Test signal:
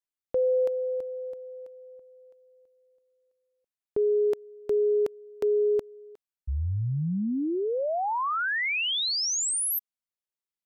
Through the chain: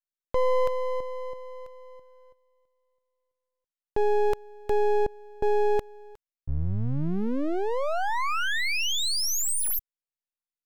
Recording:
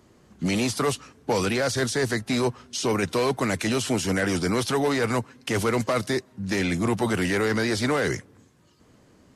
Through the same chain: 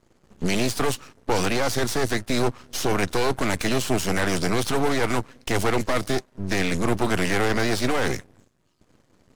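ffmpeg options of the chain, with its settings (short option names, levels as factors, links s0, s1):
-af "aeval=exprs='max(val(0),0)':c=same,agate=range=0.316:threshold=0.00126:ratio=3:release=37:detection=peak,volume=1.78"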